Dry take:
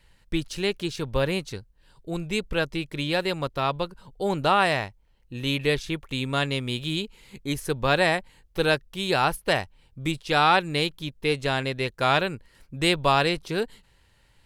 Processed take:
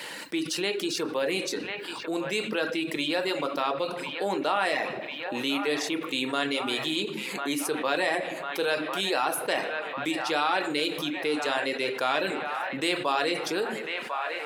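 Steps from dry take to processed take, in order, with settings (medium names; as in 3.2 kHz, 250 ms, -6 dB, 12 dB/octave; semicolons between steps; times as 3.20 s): high-pass 260 Hz 24 dB/octave; simulated room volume 130 m³, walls mixed, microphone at 0.51 m; reverb removal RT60 0.6 s; on a send: feedback echo behind a band-pass 1048 ms, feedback 58%, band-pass 1.3 kHz, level -16 dB; on the sum: level flattener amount 70%; trim -7.5 dB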